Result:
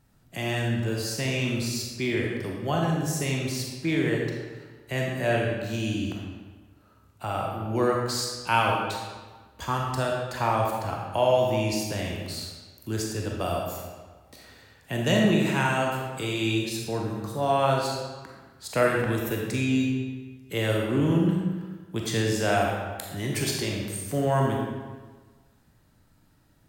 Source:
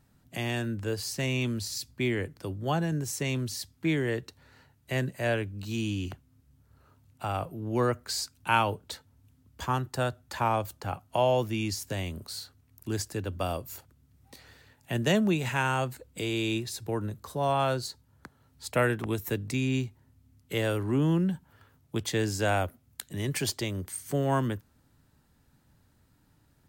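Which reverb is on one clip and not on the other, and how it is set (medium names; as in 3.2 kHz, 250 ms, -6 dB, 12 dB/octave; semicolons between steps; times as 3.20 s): algorithmic reverb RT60 1.4 s, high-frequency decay 0.8×, pre-delay 0 ms, DRR -1.5 dB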